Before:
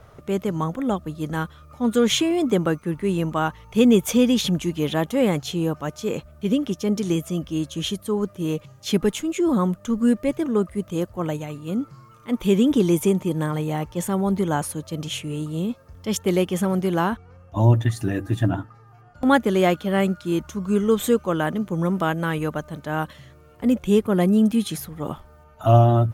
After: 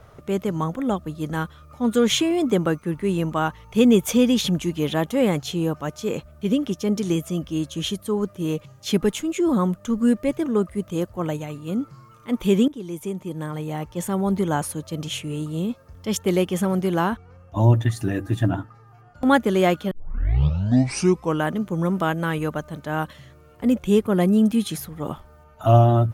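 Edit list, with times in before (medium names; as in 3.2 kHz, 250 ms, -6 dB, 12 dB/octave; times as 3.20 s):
12.68–14.32 s: fade in, from -20 dB
19.91 s: tape start 1.52 s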